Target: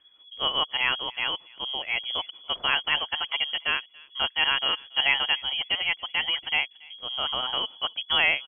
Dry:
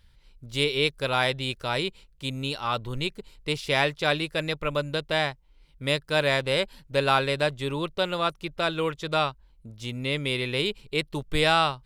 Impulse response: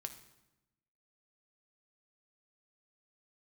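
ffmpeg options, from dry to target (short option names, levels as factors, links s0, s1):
-filter_complex "[0:a]atempo=1.4,asplit=2[s0][s1];[s1]adelay=282,lowpass=f=1300:p=1,volume=0.075,asplit=2[s2][s3];[s3]adelay=282,lowpass=f=1300:p=1,volume=0.16[s4];[s0][s2][s4]amix=inputs=3:normalize=0,lowpass=f=2900:t=q:w=0.5098,lowpass=f=2900:t=q:w=0.6013,lowpass=f=2900:t=q:w=0.9,lowpass=f=2900:t=q:w=2.563,afreqshift=-3400"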